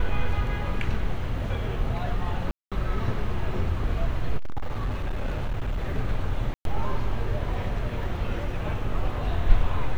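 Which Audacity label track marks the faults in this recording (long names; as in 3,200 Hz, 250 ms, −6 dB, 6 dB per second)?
2.510000	2.720000	drop-out 206 ms
4.370000	5.890000	clipping −23 dBFS
6.540000	6.650000	drop-out 112 ms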